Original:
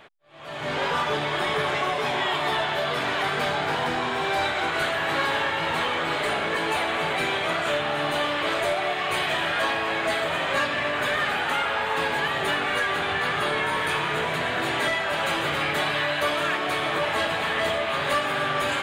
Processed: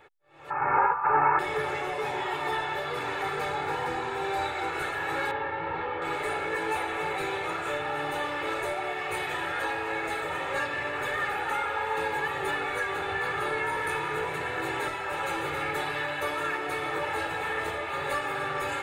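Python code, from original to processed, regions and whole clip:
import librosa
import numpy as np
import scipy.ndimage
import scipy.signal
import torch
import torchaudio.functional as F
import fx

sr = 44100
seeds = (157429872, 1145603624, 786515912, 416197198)

y = fx.chain(x, sr, fx.steep_lowpass(hz=2600.0, slope=96),
    fx.band_shelf(hz=1100.0, db=12.5, octaves=1.2),
    fx.over_compress(threshold_db=-18.0, ratio=-0.5), at=(0.5, 1.39))
y = fx.chain(y, sr, fx.lowpass(hz=4500.0, slope=24),
    fx.high_shelf(hz=2500.0, db=-12.0), at=(5.31, 6.02))
y = fx.peak_eq(y, sr, hz=4200.0, db=-6.5, octaves=1.3)
y = fx.notch(y, sr, hz=3100.0, q=14.0)
y = y + 0.73 * np.pad(y, (int(2.3 * sr / 1000.0), 0))[:len(y)]
y = y * 10.0 ** (-6.0 / 20.0)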